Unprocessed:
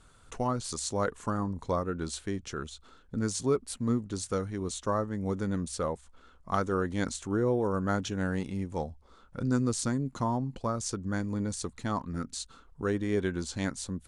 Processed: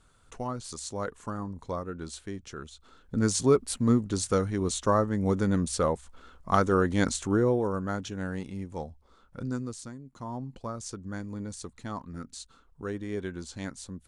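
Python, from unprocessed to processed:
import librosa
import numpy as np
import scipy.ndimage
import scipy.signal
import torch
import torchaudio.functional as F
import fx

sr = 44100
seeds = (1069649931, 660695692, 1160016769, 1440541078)

y = fx.gain(x, sr, db=fx.line((2.72, -4.0), (3.25, 5.5), (7.27, 5.5), (7.91, -3.0), (9.42, -3.0), (10.04, -15.0), (10.39, -5.0)))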